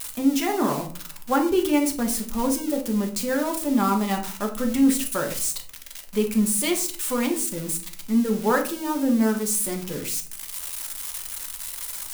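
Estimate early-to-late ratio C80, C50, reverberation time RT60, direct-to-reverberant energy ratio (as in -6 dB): 15.0 dB, 10.5 dB, 0.45 s, 2.5 dB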